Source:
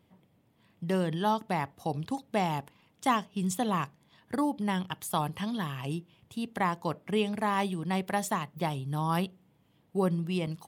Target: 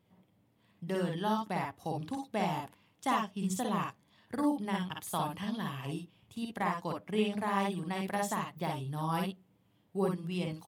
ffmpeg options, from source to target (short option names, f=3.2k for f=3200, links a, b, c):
-af "aecho=1:1:51|61:0.631|0.531,volume=-5.5dB"